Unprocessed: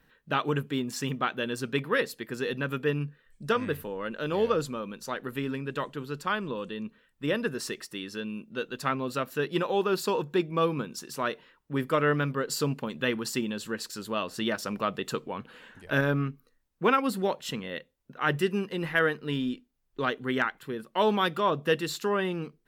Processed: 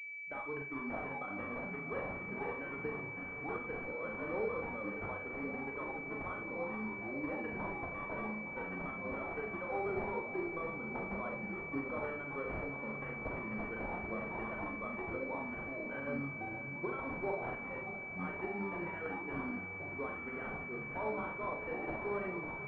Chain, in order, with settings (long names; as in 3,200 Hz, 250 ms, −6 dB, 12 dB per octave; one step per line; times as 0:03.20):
spectral dynamics exaggerated over time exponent 1.5
high-pass filter 180 Hz
spectral tilt +4 dB per octave
downward compressor 6 to 1, threshold −37 dBFS, peak gain reduction 17 dB
brickwall limiter −30 dBFS, peak gain reduction 8.5 dB
delay with pitch and tempo change per echo 577 ms, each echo −7 semitones, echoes 3, each echo −6 dB
on a send: feedback delay with all-pass diffusion 585 ms, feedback 67%, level −12 dB
on the sum: four-comb reverb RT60 0.36 s, combs from 29 ms, DRR 1.5 dB
switching amplifier with a slow clock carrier 2,300 Hz
level +2 dB